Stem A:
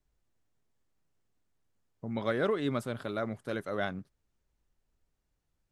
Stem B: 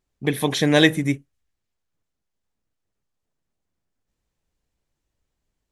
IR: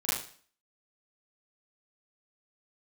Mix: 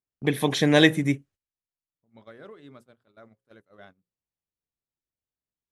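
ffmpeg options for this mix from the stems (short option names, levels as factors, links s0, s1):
-filter_complex "[0:a]bandreject=f=60:t=h:w=6,bandreject=f=120:t=h:w=6,bandreject=f=180:t=h:w=6,bandreject=f=240:t=h:w=6,bandreject=f=300:t=h:w=6,bandreject=f=360:t=h:w=6,bandreject=f=420:t=h:w=6,bandreject=f=480:t=h:w=6,bandreject=f=540:t=h:w=6,volume=0.158[s0];[1:a]highpass=73,highshelf=f=6700:g=-4.5,volume=0.841[s1];[s0][s1]amix=inputs=2:normalize=0,agate=range=0.158:threshold=0.00316:ratio=16:detection=peak"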